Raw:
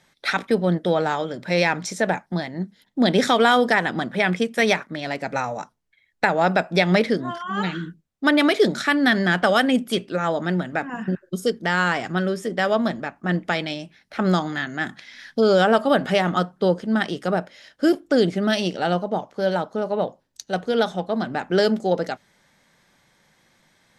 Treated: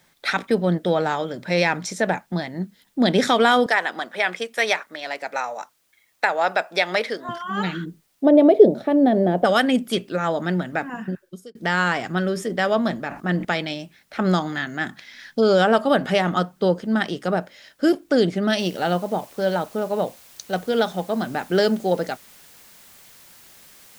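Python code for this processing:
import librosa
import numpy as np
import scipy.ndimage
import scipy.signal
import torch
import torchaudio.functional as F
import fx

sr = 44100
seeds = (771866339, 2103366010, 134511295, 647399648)

y = fx.highpass(x, sr, hz=540.0, slope=12, at=(3.66, 7.29))
y = fx.curve_eq(y, sr, hz=(180.0, 630.0, 1400.0, 3500.0, 7500.0, 11000.0), db=(0, 10, -19, -16, -29, -17), at=(7.84, 9.44), fade=0.02)
y = fx.sustainer(y, sr, db_per_s=120.0, at=(12.2, 13.45))
y = fx.noise_floor_step(y, sr, seeds[0], at_s=18.59, before_db=-67, after_db=-49, tilt_db=0.0)
y = fx.edit(y, sr, fx.fade_out_span(start_s=10.87, length_s=0.68), tone=tone)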